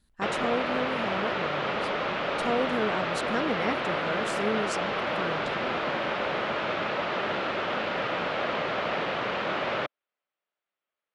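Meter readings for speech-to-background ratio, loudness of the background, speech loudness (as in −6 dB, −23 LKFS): −4.5 dB, −29.0 LKFS, −33.5 LKFS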